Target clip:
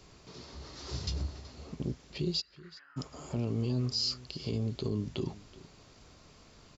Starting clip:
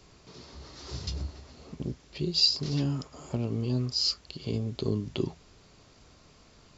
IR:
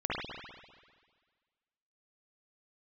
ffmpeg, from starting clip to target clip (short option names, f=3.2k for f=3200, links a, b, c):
-filter_complex "[0:a]alimiter=limit=-23dB:level=0:latency=1:release=29,asplit=3[a][b][c];[a]afade=t=out:st=2.4:d=0.02[d];[b]asuperpass=centerf=1600:order=4:qfactor=2.9,afade=t=in:st=2.4:d=0.02,afade=t=out:st=2.96:d=0.02[e];[c]afade=t=in:st=2.96:d=0.02[f];[d][e][f]amix=inputs=3:normalize=0,asplit=2[g][h];[h]aecho=0:1:376:0.112[i];[g][i]amix=inputs=2:normalize=0"